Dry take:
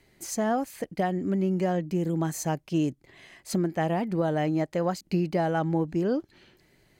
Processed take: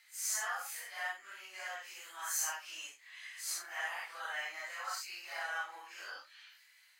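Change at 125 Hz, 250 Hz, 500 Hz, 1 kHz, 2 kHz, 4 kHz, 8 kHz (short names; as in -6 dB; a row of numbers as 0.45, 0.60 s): under -40 dB, under -40 dB, -26.0 dB, -11.5 dB, +1.0 dB, 0.0 dB, +2.0 dB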